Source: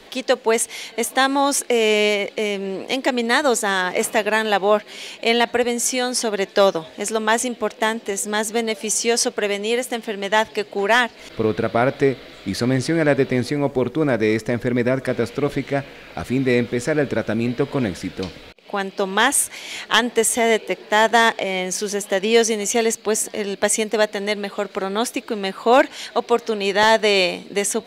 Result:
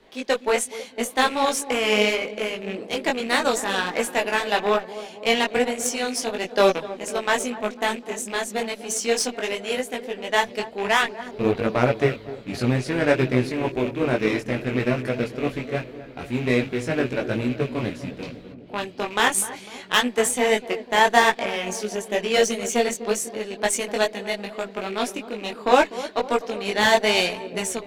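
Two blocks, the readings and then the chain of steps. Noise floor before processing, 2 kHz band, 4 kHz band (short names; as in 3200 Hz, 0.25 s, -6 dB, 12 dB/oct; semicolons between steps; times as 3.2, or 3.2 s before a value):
-44 dBFS, -2.5 dB, -2.5 dB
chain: rattling part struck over -31 dBFS, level -19 dBFS; darkening echo 0.25 s, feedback 71%, low-pass 1100 Hz, level -10 dB; added harmonics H 7 -23 dB, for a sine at -1.5 dBFS; chorus voices 6, 0.72 Hz, delay 20 ms, depth 4.4 ms; mismatched tape noise reduction decoder only; gain +1 dB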